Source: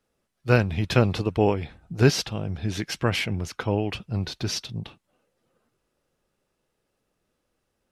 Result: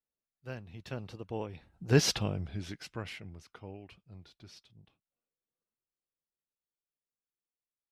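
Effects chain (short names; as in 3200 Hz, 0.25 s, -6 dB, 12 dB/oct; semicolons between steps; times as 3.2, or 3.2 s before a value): Doppler pass-by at 2.16, 17 m/s, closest 2.1 m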